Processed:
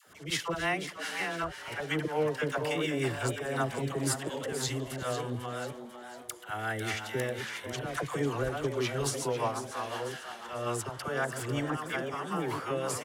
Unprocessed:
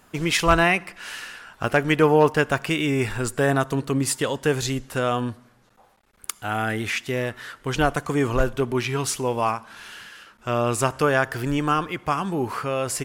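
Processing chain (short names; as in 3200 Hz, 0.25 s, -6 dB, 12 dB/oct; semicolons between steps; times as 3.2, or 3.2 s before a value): reverse delay 0.482 s, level -9 dB; HPF 87 Hz; bell 230 Hz -7.5 dB 0.79 oct; notch 2500 Hz, Q 9; auto swell 0.184 s; compressor 2:1, threshold -36 dBFS, peak gain reduction 13 dB; rotary speaker horn 5.5 Hz; dispersion lows, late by 72 ms, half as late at 650 Hz; frequency-shifting echo 0.496 s, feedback 47%, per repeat +120 Hz, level -10.5 dB; gain +3 dB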